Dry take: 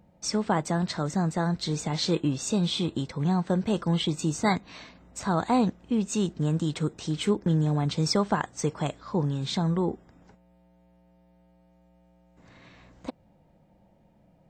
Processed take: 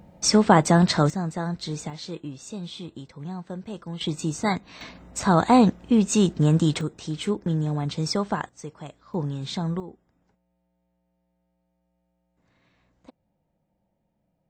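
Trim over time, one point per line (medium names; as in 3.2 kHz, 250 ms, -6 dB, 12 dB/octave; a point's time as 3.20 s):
+9.5 dB
from 1.10 s -2 dB
from 1.90 s -9.5 dB
from 4.01 s 0 dB
from 4.81 s +7 dB
from 6.81 s -1 dB
from 8.49 s -10 dB
from 9.14 s -1.5 dB
from 9.80 s -13 dB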